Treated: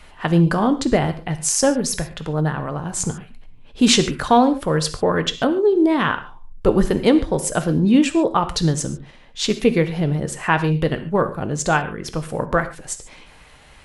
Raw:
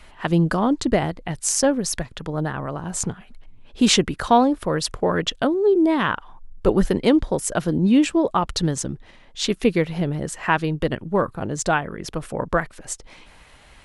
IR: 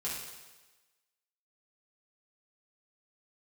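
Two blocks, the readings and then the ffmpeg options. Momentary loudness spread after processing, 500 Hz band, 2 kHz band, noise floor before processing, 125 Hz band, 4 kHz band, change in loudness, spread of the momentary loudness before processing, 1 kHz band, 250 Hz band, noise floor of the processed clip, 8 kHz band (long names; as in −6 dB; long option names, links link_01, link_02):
11 LU, +2.0 dB, +2.5 dB, −49 dBFS, +4.0 dB, +2.0 dB, +2.0 dB, 12 LU, +2.0 dB, +2.0 dB, −46 dBFS, +2.0 dB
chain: -filter_complex "[0:a]asplit=2[link_01][link_02];[1:a]atrim=start_sample=2205,atrim=end_sample=6615[link_03];[link_02][link_03]afir=irnorm=-1:irlink=0,volume=-8.5dB[link_04];[link_01][link_04]amix=inputs=2:normalize=0"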